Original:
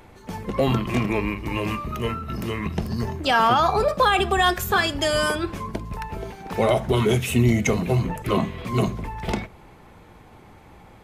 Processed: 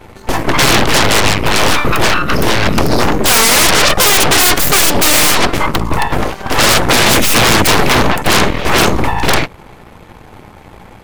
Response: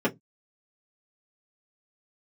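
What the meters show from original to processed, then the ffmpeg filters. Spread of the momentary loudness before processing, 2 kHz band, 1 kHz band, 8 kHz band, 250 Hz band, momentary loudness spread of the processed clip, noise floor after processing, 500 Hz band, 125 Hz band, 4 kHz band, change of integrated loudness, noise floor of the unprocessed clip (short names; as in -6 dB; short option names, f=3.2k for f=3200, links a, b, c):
13 LU, +14.5 dB, +10.0 dB, +24.0 dB, +8.5 dB, 8 LU, -38 dBFS, +8.5 dB, +6.5 dB, +17.5 dB, +12.5 dB, -48 dBFS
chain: -af "aeval=exprs='0.422*(cos(1*acos(clip(val(0)/0.422,-1,1)))-cos(1*PI/2))+0.0841*(cos(7*acos(clip(val(0)/0.422,-1,1)))-cos(7*PI/2))+0.188*(cos(8*acos(clip(val(0)/0.422,-1,1)))-cos(8*PI/2))':c=same,aeval=exprs='0.708*sin(PI/2*5.62*val(0)/0.708)':c=same,volume=-1dB"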